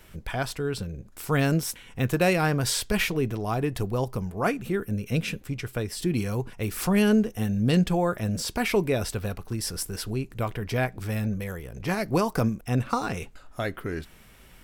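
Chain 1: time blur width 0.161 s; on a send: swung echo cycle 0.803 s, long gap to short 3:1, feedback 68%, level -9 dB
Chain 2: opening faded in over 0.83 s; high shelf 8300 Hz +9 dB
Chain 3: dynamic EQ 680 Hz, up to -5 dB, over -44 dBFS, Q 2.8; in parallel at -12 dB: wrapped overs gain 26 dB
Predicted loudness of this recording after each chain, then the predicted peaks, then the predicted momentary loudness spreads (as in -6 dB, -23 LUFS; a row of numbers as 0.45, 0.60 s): -29.0, -27.0, -27.5 LUFS; -12.0, -9.0, -10.5 dBFS; 10, 11, 10 LU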